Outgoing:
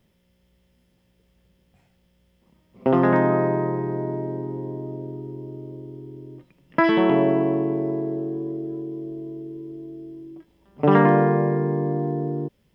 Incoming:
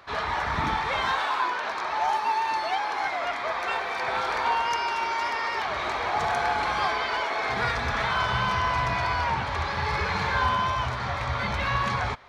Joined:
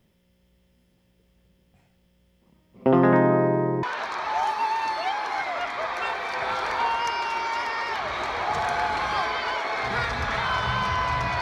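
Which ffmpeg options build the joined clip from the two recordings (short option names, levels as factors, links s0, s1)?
-filter_complex "[0:a]apad=whole_dur=11.41,atrim=end=11.41,atrim=end=3.832[s0];[1:a]atrim=start=1.488:end=9.07[s1];[s0][s1]acrossfade=d=0.004:c1=hsin:c2=hsin"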